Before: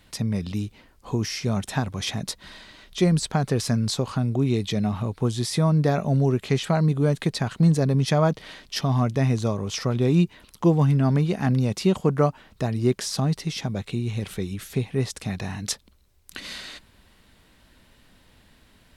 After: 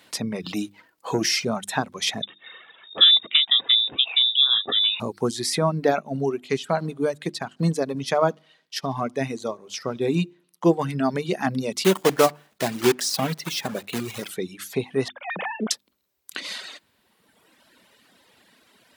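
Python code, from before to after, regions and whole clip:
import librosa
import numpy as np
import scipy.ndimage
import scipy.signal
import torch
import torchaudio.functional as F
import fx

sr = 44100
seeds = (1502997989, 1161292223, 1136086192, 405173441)

y = fx.chain(x, sr, fx.comb(ms=6.2, depth=0.38),
    fx.leveller(passes=1), at=(0.44, 1.45))
y = fx.chain(y, sr, fx.freq_invert(carrier_hz=3700),
    fx.notch(hz=590.0, q=15.0), at=(2.22, 5.0))
y = fx.chain(y, sr, fx.echo_feedback(ms=73, feedback_pct=59, wet_db=-19.5),
    fx.upward_expand(threshold_db=-40.0, expansion=1.5), at=(5.99, 10.89))
y = fx.chain(y, sr, fx.block_float(bits=3),
    fx.echo_filtered(ms=68, feedback_pct=33, hz=1700.0, wet_db=-18), at=(11.84, 14.31))
y = fx.chain(y, sr, fx.sine_speech(),
    fx.high_shelf(hz=2200.0, db=-8.5),
    fx.doppler_dist(depth_ms=0.5), at=(15.08, 15.71))
y = scipy.signal.sosfilt(scipy.signal.butter(2, 260.0, 'highpass', fs=sr, output='sos'), y)
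y = fx.hum_notches(y, sr, base_hz=50, count=7)
y = fx.dereverb_blind(y, sr, rt60_s=1.6)
y = F.gain(torch.from_numpy(y), 5.0).numpy()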